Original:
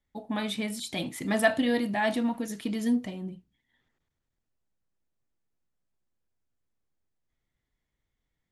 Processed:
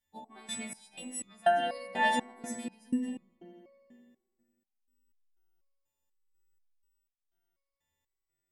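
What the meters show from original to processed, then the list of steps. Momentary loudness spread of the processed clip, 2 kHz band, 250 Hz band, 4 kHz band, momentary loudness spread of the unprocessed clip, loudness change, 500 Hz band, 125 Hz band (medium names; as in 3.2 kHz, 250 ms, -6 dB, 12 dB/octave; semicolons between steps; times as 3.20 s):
16 LU, -3.5 dB, -9.5 dB, -4.5 dB, 10 LU, -4.0 dB, -4.0 dB, -15.0 dB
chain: partials quantised in pitch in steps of 2 st; feedback echo behind a low-pass 83 ms, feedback 76%, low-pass 2.2 kHz, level -8 dB; resonator arpeggio 4.1 Hz 80–1200 Hz; trim +4 dB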